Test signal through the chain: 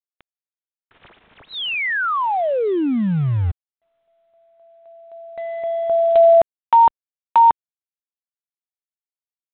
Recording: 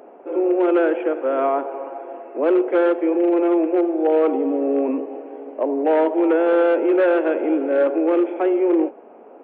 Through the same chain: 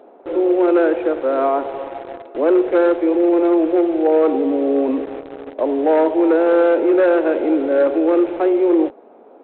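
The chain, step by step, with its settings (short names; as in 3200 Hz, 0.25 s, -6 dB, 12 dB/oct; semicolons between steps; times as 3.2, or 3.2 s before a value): in parallel at -6 dB: bit-crush 5-bit; on the sum: air absorption 340 m; G.726 32 kbps 8000 Hz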